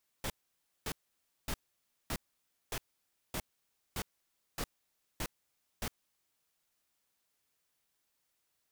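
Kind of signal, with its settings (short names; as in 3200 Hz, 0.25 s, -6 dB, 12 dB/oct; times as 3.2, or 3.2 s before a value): noise bursts pink, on 0.06 s, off 0.56 s, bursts 10, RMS -36.5 dBFS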